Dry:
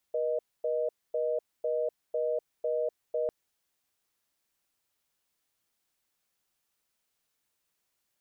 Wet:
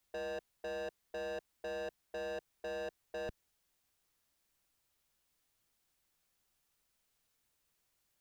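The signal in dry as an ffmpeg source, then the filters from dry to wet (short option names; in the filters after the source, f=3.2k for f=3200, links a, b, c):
-f lavfi -i "aevalsrc='0.0335*(sin(2*PI*480*t)+sin(2*PI*620*t))*clip(min(mod(t,0.5),0.25-mod(t,0.5))/0.005,0,1)':d=3.15:s=44100"
-filter_complex "[0:a]lowshelf=f=96:g=11.5,acrossover=split=190[a][b];[b]asoftclip=type=hard:threshold=-39.5dB[c];[a][c]amix=inputs=2:normalize=0"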